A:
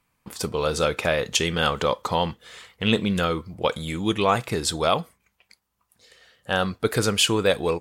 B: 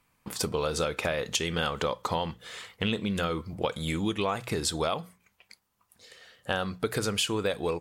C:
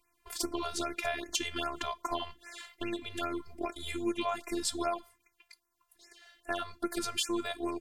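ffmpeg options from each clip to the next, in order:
ffmpeg -i in.wav -af "acompressor=threshold=-27dB:ratio=6,bandreject=frequency=60:width_type=h:width=6,bandreject=frequency=120:width_type=h:width=6,bandreject=frequency=180:width_type=h:width=6,volume=1.5dB" out.wav
ffmpeg -i in.wav -af "afftfilt=real='hypot(re,im)*cos(PI*b)':imag='0':win_size=512:overlap=0.75,afftfilt=real='re*(1-between(b*sr/1024,250*pow(3900/250,0.5+0.5*sin(2*PI*2.5*pts/sr))/1.41,250*pow(3900/250,0.5+0.5*sin(2*PI*2.5*pts/sr))*1.41))':imag='im*(1-between(b*sr/1024,250*pow(3900/250,0.5+0.5*sin(2*PI*2.5*pts/sr))/1.41,250*pow(3900/250,0.5+0.5*sin(2*PI*2.5*pts/sr))*1.41))':win_size=1024:overlap=0.75" out.wav

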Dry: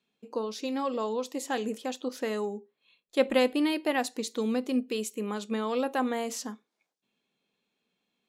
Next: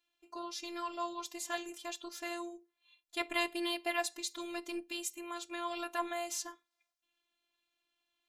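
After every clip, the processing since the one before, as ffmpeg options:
ffmpeg -i in.wav -af "equalizer=frequency=340:width_type=o:width=1.3:gain=-13,afftfilt=real='hypot(re,im)*cos(PI*b)':imag='0':win_size=512:overlap=0.75,volume=2dB" out.wav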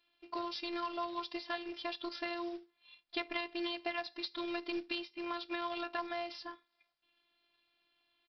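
ffmpeg -i in.wav -af "acompressor=threshold=-41dB:ratio=6,aresample=11025,acrusher=bits=4:mode=log:mix=0:aa=0.000001,aresample=44100,volume=7dB" out.wav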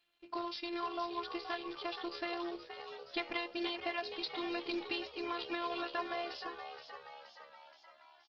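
ffmpeg -i in.wav -filter_complex "[0:a]asplit=2[link_01][link_02];[link_02]asplit=7[link_03][link_04][link_05][link_06][link_07][link_08][link_09];[link_03]adelay=473,afreqshift=71,volume=-9.5dB[link_10];[link_04]adelay=946,afreqshift=142,volume=-14.4dB[link_11];[link_05]adelay=1419,afreqshift=213,volume=-19.3dB[link_12];[link_06]adelay=1892,afreqshift=284,volume=-24.1dB[link_13];[link_07]adelay=2365,afreqshift=355,volume=-29dB[link_14];[link_08]adelay=2838,afreqshift=426,volume=-33.9dB[link_15];[link_09]adelay=3311,afreqshift=497,volume=-38.8dB[link_16];[link_10][link_11][link_12][link_13][link_14][link_15][link_16]amix=inputs=7:normalize=0[link_17];[link_01][link_17]amix=inputs=2:normalize=0" -ar 48000 -c:a libopus -b:a 16k out.opus

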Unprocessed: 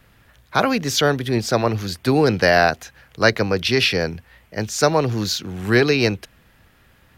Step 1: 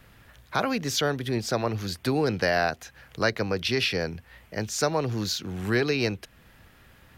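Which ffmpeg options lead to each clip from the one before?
ffmpeg -i in.wav -af "acompressor=threshold=-36dB:ratio=1.5" out.wav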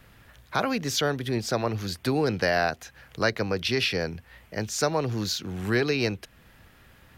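ffmpeg -i in.wav -af anull out.wav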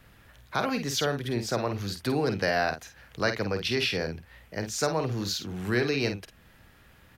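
ffmpeg -i in.wav -filter_complex "[0:a]asplit=2[link_01][link_02];[link_02]adelay=50,volume=-8dB[link_03];[link_01][link_03]amix=inputs=2:normalize=0,volume=-2.5dB" out.wav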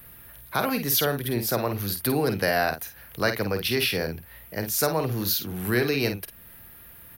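ffmpeg -i in.wav -af "aexciter=amount=12.5:drive=3.4:freq=9900,volume=2.5dB" out.wav

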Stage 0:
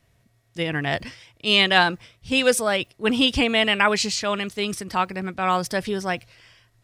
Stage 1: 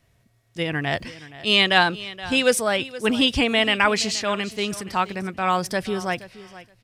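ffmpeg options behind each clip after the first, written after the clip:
ffmpeg -i in.wav -af "aecho=1:1:473|946:0.141|0.0226" out.wav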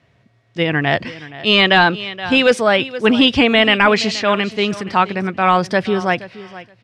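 ffmpeg -i in.wav -af "highpass=110,lowpass=3600,apsyclip=12.5dB,volume=-4dB" out.wav

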